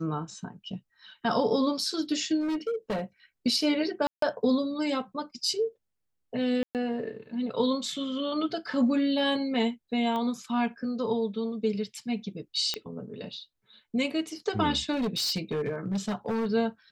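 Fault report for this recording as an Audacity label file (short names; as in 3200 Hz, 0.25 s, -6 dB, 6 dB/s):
2.400000	3.020000	clipped -26 dBFS
4.070000	4.220000	gap 0.153 s
6.630000	6.750000	gap 0.118 s
10.160000	10.160000	pop -22 dBFS
12.740000	12.740000	pop -14 dBFS
14.920000	16.470000	clipped -25 dBFS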